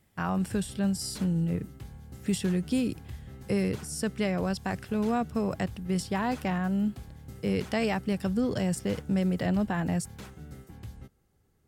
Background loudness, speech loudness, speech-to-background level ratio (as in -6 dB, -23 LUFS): -46.0 LUFS, -30.0 LUFS, 16.0 dB